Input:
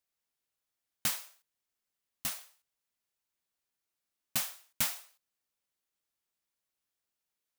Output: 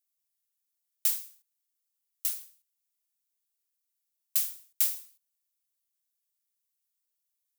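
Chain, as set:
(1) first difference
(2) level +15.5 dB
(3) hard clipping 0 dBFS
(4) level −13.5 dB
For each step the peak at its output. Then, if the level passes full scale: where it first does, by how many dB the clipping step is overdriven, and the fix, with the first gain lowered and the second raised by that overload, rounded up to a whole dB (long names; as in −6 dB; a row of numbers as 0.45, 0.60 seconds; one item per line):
−10.5, +5.0, 0.0, −13.5 dBFS
step 2, 5.0 dB
step 2 +10.5 dB, step 4 −8.5 dB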